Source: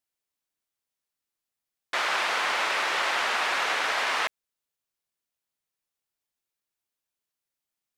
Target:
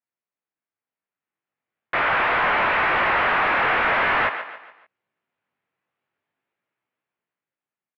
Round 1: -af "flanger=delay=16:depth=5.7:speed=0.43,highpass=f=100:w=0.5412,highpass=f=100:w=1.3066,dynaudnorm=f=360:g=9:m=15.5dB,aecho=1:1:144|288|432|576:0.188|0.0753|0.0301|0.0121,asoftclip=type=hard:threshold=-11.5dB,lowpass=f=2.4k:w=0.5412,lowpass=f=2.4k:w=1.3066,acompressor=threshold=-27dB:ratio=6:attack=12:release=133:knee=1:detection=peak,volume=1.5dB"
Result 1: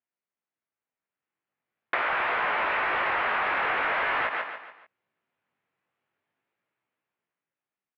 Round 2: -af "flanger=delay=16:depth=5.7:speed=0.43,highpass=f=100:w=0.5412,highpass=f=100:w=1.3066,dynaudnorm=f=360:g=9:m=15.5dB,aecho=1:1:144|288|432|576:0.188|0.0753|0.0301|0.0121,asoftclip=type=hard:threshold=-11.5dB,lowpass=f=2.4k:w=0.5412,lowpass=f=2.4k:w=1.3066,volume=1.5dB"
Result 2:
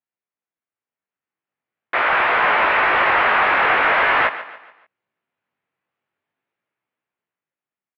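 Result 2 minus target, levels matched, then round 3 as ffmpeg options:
hard clip: distortion -8 dB
-af "flanger=delay=16:depth=5.7:speed=0.43,highpass=f=100:w=0.5412,highpass=f=100:w=1.3066,dynaudnorm=f=360:g=9:m=15.5dB,aecho=1:1:144|288|432|576:0.188|0.0753|0.0301|0.0121,asoftclip=type=hard:threshold=-18dB,lowpass=f=2.4k:w=0.5412,lowpass=f=2.4k:w=1.3066,volume=1.5dB"

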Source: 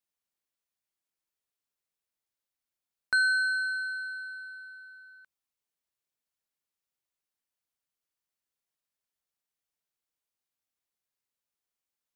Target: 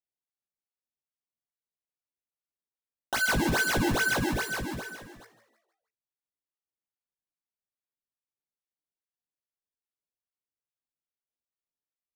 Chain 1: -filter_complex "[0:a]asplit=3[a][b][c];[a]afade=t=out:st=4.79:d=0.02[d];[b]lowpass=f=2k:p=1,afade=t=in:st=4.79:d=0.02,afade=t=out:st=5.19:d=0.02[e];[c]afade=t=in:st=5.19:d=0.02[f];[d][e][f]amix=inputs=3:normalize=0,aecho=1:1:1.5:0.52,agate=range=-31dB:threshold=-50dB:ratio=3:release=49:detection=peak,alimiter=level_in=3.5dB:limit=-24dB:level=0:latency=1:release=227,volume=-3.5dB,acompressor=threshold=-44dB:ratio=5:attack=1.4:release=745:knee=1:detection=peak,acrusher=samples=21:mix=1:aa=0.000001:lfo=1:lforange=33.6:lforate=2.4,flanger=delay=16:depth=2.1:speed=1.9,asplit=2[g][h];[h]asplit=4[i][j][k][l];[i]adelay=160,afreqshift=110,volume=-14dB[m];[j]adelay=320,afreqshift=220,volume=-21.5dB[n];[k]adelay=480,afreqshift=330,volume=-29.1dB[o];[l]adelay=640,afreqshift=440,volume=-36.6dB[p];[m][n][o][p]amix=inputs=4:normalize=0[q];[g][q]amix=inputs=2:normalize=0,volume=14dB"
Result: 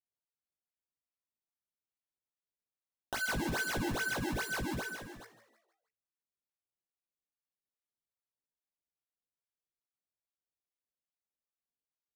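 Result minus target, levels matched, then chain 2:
compressor: peak gain reduction +8.5 dB
-filter_complex "[0:a]asplit=3[a][b][c];[a]afade=t=out:st=4.79:d=0.02[d];[b]lowpass=f=2k:p=1,afade=t=in:st=4.79:d=0.02,afade=t=out:st=5.19:d=0.02[e];[c]afade=t=in:st=5.19:d=0.02[f];[d][e][f]amix=inputs=3:normalize=0,aecho=1:1:1.5:0.52,agate=range=-31dB:threshold=-50dB:ratio=3:release=49:detection=peak,alimiter=level_in=3.5dB:limit=-24dB:level=0:latency=1:release=227,volume=-3.5dB,acompressor=threshold=-33.5dB:ratio=5:attack=1.4:release=745:knee=1:detection=peak,acrusher=samples=21:mix=1:aa=0.000001:lfo=1:lforange=33.6:lforate=2.4,flanger=delay=16:depth=2.1:speed=1.9,asplit=2[g][h];[h]asplit=4[i][j][k][l];[i]adelay=160,afreqshift=110,volume=-14dB[m];[j]adelay=320,afreqshift=220,volume=-21.5dB[n];[k]adelay=480,afreqshift=330,volume=-29.1dB[o];[l]adelay=640,afreqshift=440,volume=-36.6dB[p];[m][n][o][p]amix=inputs=4:normalize=0[q];[g][q]amix=inputs=2:normalize=0,volume=14dB"

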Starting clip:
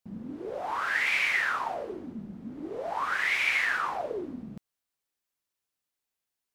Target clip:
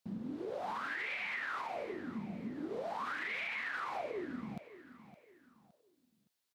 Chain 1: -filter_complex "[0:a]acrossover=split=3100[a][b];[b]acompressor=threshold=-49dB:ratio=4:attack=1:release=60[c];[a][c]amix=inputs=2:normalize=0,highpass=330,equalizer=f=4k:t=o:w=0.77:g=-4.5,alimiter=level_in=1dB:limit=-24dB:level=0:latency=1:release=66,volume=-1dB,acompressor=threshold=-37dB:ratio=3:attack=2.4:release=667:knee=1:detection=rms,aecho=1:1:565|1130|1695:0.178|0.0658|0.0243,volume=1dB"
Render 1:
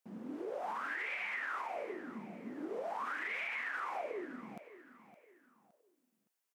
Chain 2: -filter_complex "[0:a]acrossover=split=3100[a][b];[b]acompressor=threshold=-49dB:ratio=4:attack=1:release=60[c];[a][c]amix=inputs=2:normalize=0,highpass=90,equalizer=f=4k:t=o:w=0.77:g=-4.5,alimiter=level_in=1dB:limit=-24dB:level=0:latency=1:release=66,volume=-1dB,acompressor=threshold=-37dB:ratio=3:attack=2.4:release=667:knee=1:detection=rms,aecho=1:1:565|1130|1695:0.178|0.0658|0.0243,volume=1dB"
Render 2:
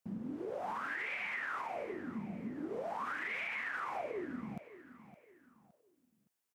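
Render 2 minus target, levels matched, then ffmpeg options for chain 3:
4000 Hz band -4.0 dB
-filter_complex "[0:a]acrossover=split=3100[a][b];[b]acompressor=threshold=-49dB:ratio=4:attack=1:release=60[c];[a][c]amix=inputs=2:normalize=0,highpass=90,equalizer=f=4k:t=o:w=0.77:g=5,alimiter=level_in=1dB:limit=-24dB:level=0:latency=1:release=66,volume=-1dB,acompressor=threshold=-37dB:ratio=3:attack=2.4:release=667:knee=1:detection=rms,aecho=1:1:565|1130|1695:0.178|0.0658|0.0243,volume=1dB"

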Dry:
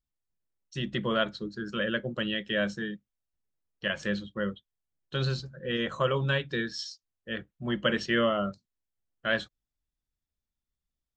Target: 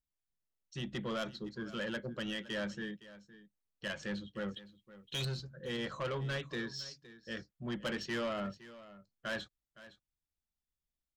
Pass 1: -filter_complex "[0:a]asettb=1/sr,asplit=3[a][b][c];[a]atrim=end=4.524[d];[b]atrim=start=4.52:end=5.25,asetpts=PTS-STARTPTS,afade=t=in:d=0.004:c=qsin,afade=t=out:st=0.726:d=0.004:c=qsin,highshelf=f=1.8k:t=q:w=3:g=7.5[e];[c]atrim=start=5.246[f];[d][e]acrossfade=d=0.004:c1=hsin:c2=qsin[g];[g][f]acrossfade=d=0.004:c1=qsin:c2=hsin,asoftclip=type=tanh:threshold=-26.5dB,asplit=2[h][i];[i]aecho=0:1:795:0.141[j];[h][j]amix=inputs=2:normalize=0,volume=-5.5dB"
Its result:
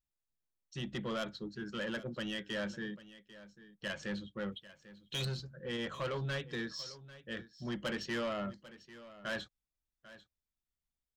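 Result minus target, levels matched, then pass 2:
echo 0.281 s late
-filter_complex "[0:a]asettb=1/sr,asplit=3[a][b][c];[a]atrim=end=4.524[d];[b]atrim=start=4.52:end=5.25,asetpts=PTS-STARTPTS,afade=t=in:d=0.004:c=qsin,afade=t=out:st=0.726:d=0.004:c=qsin,highshelf=f=1.8k:t=q:w=3:g=7.5[e];[c]atrim=start=5.246[f];[d][e]acrossfade=d=0.004:c1=hsin:c2=qsin[g];[g][f]acrossfade=d=0.004:c1=qsin:c2=hsin,asoftclip=type=tanh:threshold=-26.5dB,asplit=2[h][i];[i]aecho=0:1:514:0.141[j];[h][j]amix=inputs=2:normalize=0,volume=-5.5dB"

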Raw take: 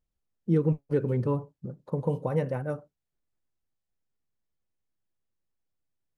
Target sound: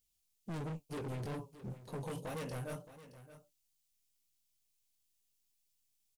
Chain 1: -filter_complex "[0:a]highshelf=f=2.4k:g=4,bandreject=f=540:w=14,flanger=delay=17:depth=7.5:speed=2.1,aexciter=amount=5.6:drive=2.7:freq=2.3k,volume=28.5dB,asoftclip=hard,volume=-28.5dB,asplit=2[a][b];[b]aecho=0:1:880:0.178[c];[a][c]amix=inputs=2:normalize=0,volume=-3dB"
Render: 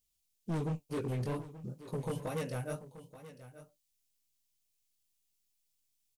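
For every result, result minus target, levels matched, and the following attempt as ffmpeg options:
echo 0.26 s late; overloaded stage: distortion -4 dB
-filter_complex "[0:a]highshelf=f=2.4k:g=4,bandreject=f=540:w=14,flanger=delay=17:depth=7.5:speed=2.1,aexciter=amount=5.6:drive=2.7:freq=2.3k,volume=28.5dB,asoftclip=hard,volume=-28.5dB,asplit=2[a][b];[b]aecho=0:1:620:0.178[c];[a][c]amix=inputs=2:normalize=0,volume=-3dB"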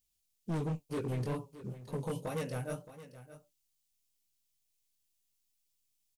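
overloaded stage: distortion -4 dB
-filter_complex "[0:a]highshelf=f=2.4k:g=4,bandreject=f=540:w=14,flanger=delay=17:depth=7.5:speed=2.1,aexciter=amount=5.6:drive=2.7:freq=2.3k,volume=36dB,asoftclip=hard,volume=-36dB,asplit=2[a][b];[b]aecho=0:1:620:0.178[c];[a][c]amix=inputs=2:normalize=0,volume=-3dB"

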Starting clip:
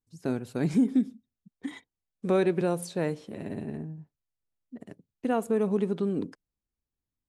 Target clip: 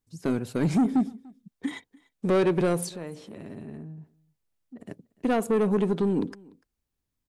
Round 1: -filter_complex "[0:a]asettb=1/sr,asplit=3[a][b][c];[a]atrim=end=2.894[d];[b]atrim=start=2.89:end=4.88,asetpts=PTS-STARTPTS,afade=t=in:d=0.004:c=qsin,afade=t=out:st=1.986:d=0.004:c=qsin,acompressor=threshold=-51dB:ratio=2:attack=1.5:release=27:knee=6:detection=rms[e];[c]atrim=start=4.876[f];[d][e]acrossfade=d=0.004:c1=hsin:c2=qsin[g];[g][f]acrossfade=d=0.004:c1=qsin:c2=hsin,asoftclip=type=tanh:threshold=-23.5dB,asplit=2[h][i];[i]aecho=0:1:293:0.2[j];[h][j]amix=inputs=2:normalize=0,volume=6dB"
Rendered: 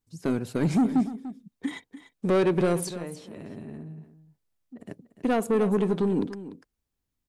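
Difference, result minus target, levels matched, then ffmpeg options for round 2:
echo-to-direct +11 dB
-filter_complex "[0:a]asettb=1/sr,asplit=3[a][b][c];[a]atrim=end=2.894[d];[b]atrim=start=2.89:end=4.88,asetpts=PTS-STARTPTS,afade=t=in:d=0.004:c=qsin,afade=t=out:st=1.986:d=0.004:c=qsin,acompressor=threshold=-51dB:ratio=2:attack=1.5:release=27:knee=6:detection=rms[e];[c]atrim=start=4.876[f];[d][e]acrossfade=d=0.004:c1=hsin:c2=qsin[g];[g][f]acrossfade=d=0.004:c1=qsin:c2=hsin,asoftclip=type=tanh:threshold=-23.5dB,asplit=2[h][i];[i]aecho=0:1:293:0.0562[j];[h][j]amix=inputs=2:normalize=0,volume=6dB"

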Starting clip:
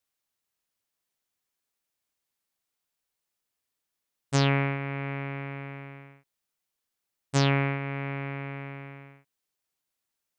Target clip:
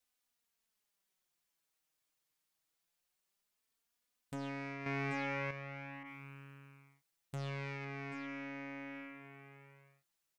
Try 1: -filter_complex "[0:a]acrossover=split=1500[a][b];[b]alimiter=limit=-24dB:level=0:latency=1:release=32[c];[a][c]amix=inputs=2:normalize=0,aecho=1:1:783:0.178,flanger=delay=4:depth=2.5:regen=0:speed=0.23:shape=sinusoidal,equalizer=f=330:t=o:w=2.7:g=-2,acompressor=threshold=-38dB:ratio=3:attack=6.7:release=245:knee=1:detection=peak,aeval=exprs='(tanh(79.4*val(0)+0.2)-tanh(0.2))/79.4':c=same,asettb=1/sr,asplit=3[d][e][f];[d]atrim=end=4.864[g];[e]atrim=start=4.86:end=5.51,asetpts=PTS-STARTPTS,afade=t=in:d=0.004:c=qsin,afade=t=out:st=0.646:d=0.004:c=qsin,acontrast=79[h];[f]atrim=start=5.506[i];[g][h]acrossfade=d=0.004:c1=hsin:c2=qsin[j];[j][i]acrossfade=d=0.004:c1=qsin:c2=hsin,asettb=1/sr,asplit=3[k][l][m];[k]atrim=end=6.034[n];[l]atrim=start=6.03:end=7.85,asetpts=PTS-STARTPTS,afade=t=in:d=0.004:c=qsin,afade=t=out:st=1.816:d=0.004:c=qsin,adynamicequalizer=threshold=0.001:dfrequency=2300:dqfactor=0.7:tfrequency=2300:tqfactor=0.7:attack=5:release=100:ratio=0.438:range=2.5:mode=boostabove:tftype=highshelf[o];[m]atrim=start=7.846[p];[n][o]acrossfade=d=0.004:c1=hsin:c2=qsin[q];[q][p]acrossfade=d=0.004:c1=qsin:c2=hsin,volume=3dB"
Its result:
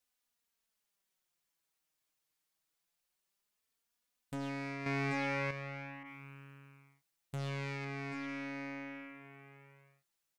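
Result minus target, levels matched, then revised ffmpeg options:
compressor: peak gain reduction -4 dB
-filter_complex "[0:a]acrossover=split=1500[a][b];[b]alimiter=limit=-24dB:level=0:latency=1:release=32[c];[a][c]amix=inputs=2:normalize=0,aecho=1:1:783:0.178,flanger=delay=4:depth=2.5:regen=0:speed=0.23:shape=sinusoidal,equalizer=f=330:t=o:w=2.7:g=-2,acompressor=threshold=-44dB:ratio=3:attack=6.7:release=245:knee=1:detection=peak,aeval=exprs='(tanh(79.4*val(0)+0.2)-tanh(0.2))/79.4':c=same,asettb=1/sr,asplit=3[d][e][f];[d]atrim=end=4.864[g];[e]atrim=start=4.86:end=5.51,asetpts=PTS-STARTPTS,afade=t=in:d=0.004:c=qsin,afade=t=out:st=0.646:d=0.004:c=qsin,acontrast=79[h];[f]atrim=start=5.506[i];[g][h]acrossfade=d=0.004:c1=hsin:c2=qsin[j];[j][i]acrossfade=d=0.004:c1=qsin:c2=hsin,asettb=1/sr,asplit=3[k][l][m];[k]atrim=end=6.034[n];[l]atrim=start=6.03:end=7.85,asetpts=PTS-STARTPTS,afade=t=in:d=0.004:c=qsin,afade=t=out:st=1.816:d=0.004:c=qsin,adynamicequalizer=threshold=0.001:dfrequency=2300:dqfactor=0.7:tfrequency=2300:tqfactor=0.7:attack=5:release=100:ratio=0.438:range=2.5:mode=boostabove:tftype=highshelf[o];[m]atrim=start=7.846[p];[n][o]acrossfade=d=0.004:c1=hsin:c2=qsin[q];[q][p]acrossfade=d=0.004:c1=qsin:c2=hsin,volume=3dB"

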